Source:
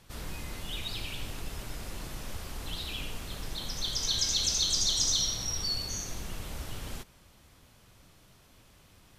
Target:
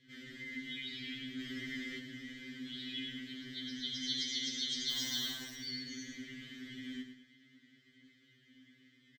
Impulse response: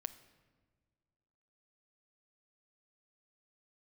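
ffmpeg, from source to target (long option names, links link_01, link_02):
-filter_complex "[0:a]asplit=3[link_01][link_02][link_03];[link_01]bandpass=frequency=270:width_type=q:width=8,volume=0dB[link_04];[link_02]bandpass=frequency=2290:width_type=q:width=8,volume=-6dB[link_05];[link_03]bandpass=frequency=3010:width_type=q:width=8,volume=-9dB[link_06];[link_04][link_05][link_06]amix=inputs=3:normalize=0,equalizer=frequency=690:width=0.66:gain=-3.5,asplit=3[link_07][link_08][link_09];[link_07]afade=type=out:start_time=4.89:duration=0.02[link_10];[link_08]acrusher=bits=7:mix=0:aa=0.5,afade=type=in:start_time=4.89:duration=0.02,afade=type=out:start_time=5.54:duration=0.02[link_11];[link_09]afade=type=in:start_time=5.54:duration=0.02[link_12];[link_10][link_11][link_12]amix=inputs=3:normalize=0,bandreject=frequency=58.63:width_type=h:width=4,bandreject=frequency=117.26:width_type=h:width=4,bandreject=frequency=175.89:width_type=h:width=4,bandreject=frequency=234.52:width_type=h:width=4,bandreject=frequency=293.15:width_type=h:width=4,bandreject=frequency=351.78:width_type=h:width=4,bandreject=frequency=410.41:width_type=h:width=4,bandreject=frequency=469.04:width_type=h:width=4,bandreject=frequency=527.67:width_type=h:width=4,bandreject=frequency=586.3:width_type=h:width=4,bandreject=frequency=644.93:width_type=h:width=4,bandreject=frequency=703.56:width_type=h:width=4,bandreject=frequency=762.19:width_type=h:width=4,bandreject=frequency=820.82:width_type=h:width=4,bandreject=frequency=879.45:width_type=h:width=4,bandreject=frequency=938.08:width_type=h:width=4,bandreject=frequency=996.71:width_type=h:width=4,bandreject=frequency=1055.34:width_type=h:width=4,bandreject=frequency=1113.97:width_type=h:width=4,bandreject=frequency=1172.6:width_type=h:width=4,asplit=2[link_13][link_14];[link_14]aecho=0:1:106|212|318|424:0.398|0.135|0.046|0.0156[link_15];[link_13][link_15]amix=inputs=2:normalize=0,asettb=1/sr,asplit=3[link_16][link_17][link_18];[link_16]atrim=end=1.404[link_19];[link_17]atrim=start=1.4:end=1.99,asetpts=PTS-STARTPTS,afade=type=in:duration=0.004:curve=qsin,afade=type=out:start_time=0.586:duration=0.004:curve=qsin,acontrast=34[link_20];[link_18]atrim=start=1.986[link_21];[link_19][link_20]acrossfade=duration=0.004:curve1=hsin:curve2=qsin[link_22];[link_22][link_21]acrossfade=duration=0.004:curve1=qsin:curve2=hsin,superequalizer=6b=0.447:11b=2.82:12b=0.447:16b=0.282,afftfilt=real='re*2.45*eq(mod(b,6),0)':imag='im*2.45*eq(mod(b,6),0)':win_size=2048:overlap=0.75,volume=11dB"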